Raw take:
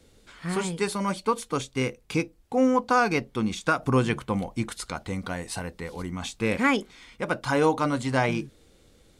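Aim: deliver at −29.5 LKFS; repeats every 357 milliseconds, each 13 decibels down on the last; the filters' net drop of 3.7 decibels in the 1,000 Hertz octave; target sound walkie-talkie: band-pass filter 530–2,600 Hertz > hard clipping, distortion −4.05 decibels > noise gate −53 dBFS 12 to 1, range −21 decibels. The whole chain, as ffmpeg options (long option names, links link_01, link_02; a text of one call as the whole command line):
ffmpeg -i in.wav -af "highpass=530,lowpass=2600,equalizer=frequency=1000:width_type=o:gain=-4,aecho=1:1:357|714|1071:0.224|0.0493|0.0108,asoftclip=type=hard:threshold=-32dB,agate=range=-21dB:threshold=-53dB:ratio=12,volume=8.5dB" out.wav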